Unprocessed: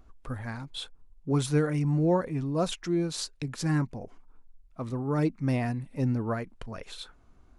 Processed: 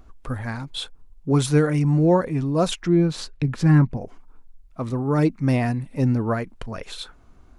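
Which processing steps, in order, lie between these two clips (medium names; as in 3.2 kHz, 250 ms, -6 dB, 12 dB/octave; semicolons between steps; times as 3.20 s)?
2.83–3.97 s: tone controls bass +6 dB, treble -11 dB; trim +7 dB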